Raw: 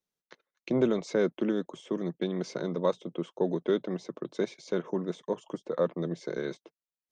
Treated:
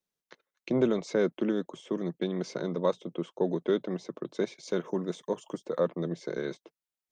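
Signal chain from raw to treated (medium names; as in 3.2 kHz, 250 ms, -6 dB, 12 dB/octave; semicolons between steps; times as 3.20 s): 4.63–5.80 s: treble shelf 6.2 kHz +10.5 dB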